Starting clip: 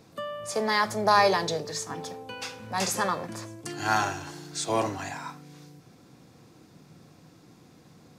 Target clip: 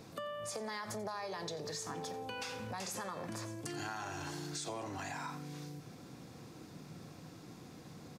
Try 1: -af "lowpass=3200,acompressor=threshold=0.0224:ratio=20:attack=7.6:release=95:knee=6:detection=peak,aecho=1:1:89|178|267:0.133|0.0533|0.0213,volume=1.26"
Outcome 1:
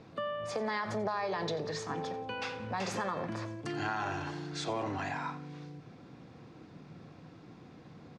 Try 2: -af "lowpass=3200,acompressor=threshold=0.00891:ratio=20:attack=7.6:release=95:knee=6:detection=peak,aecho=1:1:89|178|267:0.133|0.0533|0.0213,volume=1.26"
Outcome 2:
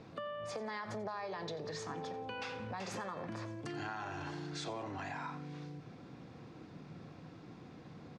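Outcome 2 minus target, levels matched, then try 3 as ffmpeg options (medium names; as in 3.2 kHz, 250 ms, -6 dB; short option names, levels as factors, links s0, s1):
4 kHz band -2.5 dB
-af "acompressor=threshold=0.00891:ratio=20:attack=7.6:release=95:knee=6:detection=peak,aecho=1:1:89|178|267:0.133|0.0533|0.0213,volume=1.26"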